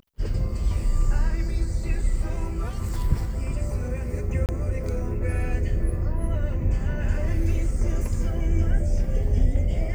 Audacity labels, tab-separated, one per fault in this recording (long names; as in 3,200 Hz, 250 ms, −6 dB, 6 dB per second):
4.460000	4.490000	drop-out 28 ms